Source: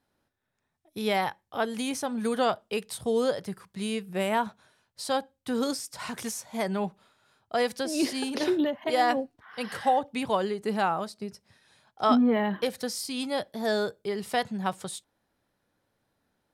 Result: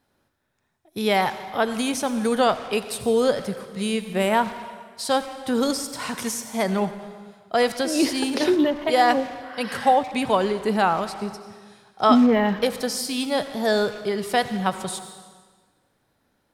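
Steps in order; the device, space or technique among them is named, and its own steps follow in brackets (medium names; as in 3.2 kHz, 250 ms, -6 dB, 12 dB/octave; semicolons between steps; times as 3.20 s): saturated reverb return (on a send at -7 dB: reverberation RT60 1.4 s, pre-delay 67 ms + saturation -31 dBFS, distortion -7 dB); on the sum: trim +6 dB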